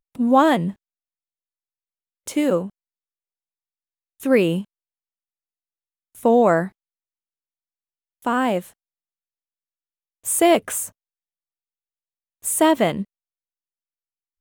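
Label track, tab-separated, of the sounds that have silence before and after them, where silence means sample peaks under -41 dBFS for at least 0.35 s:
2.270000	2.700000	sound
4.200000	4.640000	sound
6.150000	6.690000	sound
8.220000	8.700000	sound
10.250000	10.890000	sound
12.440000	13.040000	sound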